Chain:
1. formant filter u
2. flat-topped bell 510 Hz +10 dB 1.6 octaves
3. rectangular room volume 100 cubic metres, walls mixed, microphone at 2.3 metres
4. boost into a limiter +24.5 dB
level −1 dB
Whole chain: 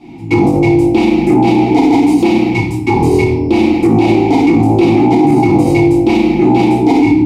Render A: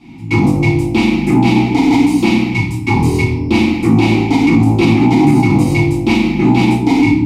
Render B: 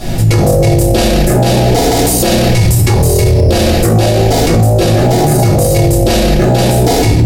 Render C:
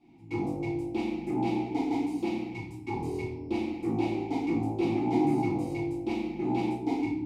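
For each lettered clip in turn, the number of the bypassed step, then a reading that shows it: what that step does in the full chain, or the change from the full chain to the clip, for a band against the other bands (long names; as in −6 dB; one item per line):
2, 500 Hz band −9.0 dB
1, 4 kHz band +10.0 dB
4, change in crest factor +8.0 dB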